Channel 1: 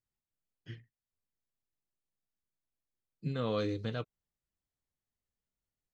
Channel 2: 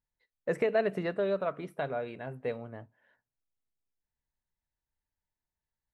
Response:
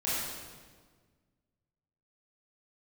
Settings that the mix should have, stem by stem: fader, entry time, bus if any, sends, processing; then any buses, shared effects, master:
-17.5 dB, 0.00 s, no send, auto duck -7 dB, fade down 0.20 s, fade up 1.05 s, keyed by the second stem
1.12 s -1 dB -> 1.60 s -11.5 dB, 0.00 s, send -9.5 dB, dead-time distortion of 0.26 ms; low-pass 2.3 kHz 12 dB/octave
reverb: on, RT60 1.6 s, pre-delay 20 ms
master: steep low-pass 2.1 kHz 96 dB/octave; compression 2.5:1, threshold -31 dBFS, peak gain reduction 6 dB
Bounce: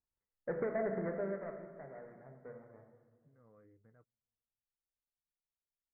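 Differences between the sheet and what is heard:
stem 1 -17.5 dB -> -29.0 dB; stem 2 -1.0 dB -> -8.0 dB

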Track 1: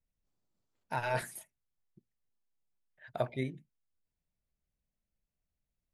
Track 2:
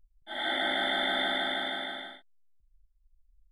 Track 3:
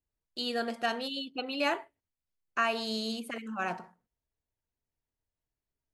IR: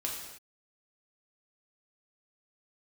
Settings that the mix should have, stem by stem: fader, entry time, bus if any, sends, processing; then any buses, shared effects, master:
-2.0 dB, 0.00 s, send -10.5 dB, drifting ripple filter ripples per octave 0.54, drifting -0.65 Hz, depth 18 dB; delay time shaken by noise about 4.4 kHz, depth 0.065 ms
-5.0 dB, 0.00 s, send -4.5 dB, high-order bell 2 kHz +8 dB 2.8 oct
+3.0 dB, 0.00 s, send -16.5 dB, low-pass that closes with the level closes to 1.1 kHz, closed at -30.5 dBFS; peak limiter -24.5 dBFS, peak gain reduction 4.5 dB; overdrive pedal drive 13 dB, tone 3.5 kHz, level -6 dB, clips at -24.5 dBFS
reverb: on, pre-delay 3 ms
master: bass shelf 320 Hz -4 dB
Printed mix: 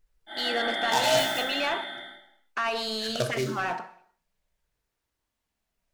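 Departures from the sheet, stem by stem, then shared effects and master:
stem 1: send -10.5 dB -> -0.5 dB; stem 2: missing high-order bell 2 kHz +8 dB 2.8 oct; stem 3: missing low-pass that closes with the level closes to 1.1 kHz, closed at -30.5 dBFS

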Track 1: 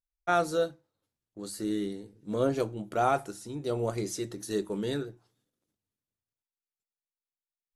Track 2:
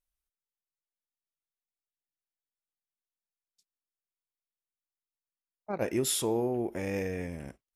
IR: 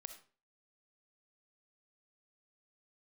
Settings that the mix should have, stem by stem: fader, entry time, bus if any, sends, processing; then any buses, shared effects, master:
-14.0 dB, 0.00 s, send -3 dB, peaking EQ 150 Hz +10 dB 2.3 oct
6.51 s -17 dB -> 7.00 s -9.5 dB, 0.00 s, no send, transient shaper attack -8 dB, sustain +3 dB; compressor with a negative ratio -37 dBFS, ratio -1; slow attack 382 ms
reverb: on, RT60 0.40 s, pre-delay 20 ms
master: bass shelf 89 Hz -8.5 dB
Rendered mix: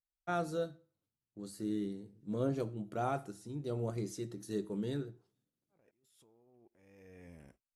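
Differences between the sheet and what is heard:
stem 2 -17.0 dB -> -27.0 dB; master: missing bass shelf 89 Hz -8.5 dB

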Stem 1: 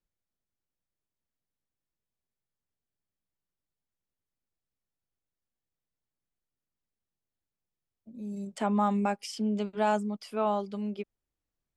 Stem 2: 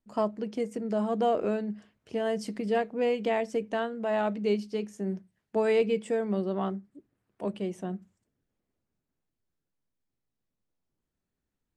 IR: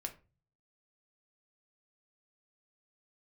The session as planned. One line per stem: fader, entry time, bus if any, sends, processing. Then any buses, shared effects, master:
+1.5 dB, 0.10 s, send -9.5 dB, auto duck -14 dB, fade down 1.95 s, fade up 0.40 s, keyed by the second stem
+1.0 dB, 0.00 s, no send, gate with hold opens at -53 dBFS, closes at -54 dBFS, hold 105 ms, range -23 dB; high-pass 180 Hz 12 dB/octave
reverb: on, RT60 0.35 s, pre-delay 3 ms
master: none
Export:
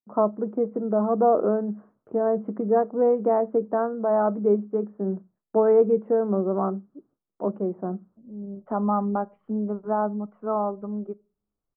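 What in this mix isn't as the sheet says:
stem 2 +1.0 dB -> +7.0 dB; master: extra elliptic low-pass 1.3 kHz, stop band 80 dB

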